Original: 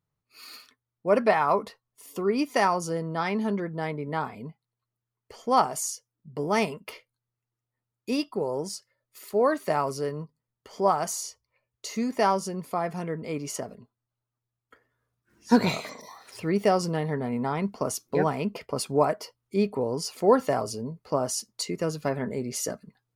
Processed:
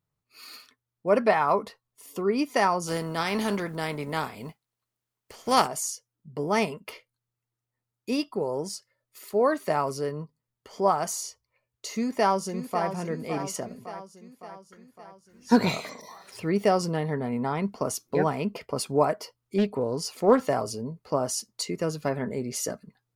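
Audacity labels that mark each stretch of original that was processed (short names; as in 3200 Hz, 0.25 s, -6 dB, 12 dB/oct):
2.860000	5.660000	spectral contrast lowered exponent 0.64
11.920000	12.890000	echo throw 0.56 s, feedback 60%, level -9.5 dB
19.580000	20.480000	Doppler distortion depth 0.28 ms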